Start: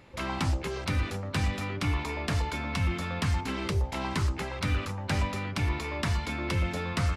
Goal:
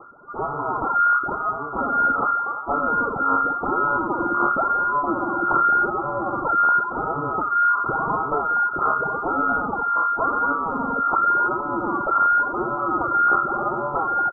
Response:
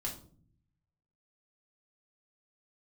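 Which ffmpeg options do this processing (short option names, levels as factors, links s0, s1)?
-filter_complex "[0:a]aphaser=in_gain=1:out_gain=1:delay=3.5:decay=0.73:speed=1.8:type=sinusoidal,acrossover=split=140|1300[s0][s1][s2];[s2]alimiter=level_in=1.06:limit=0.0631:level=0:latency=1:release=384,volume=0.944[s3];[s0][s1][s3]amix=inputs=3:normalize=0,dynaudnorm=f=180:g=3:m=2,aresample=8000,asoftclip=type=tanh:threshold=0.168,aresample=44100,crystalizer=i=6:c=0,lowpass=f=2500:t=q:w=0.5098,lowpass=f=2500:t=q:w=0.6013,lowpass=f=2500:t=q:w=0.9,lowpass=f=2500:t=q:w=2.563,afreqshift=-2900,equalizer=f=190:t=o:w=0.63:g=-4,asetrate=22050,aresample=44100"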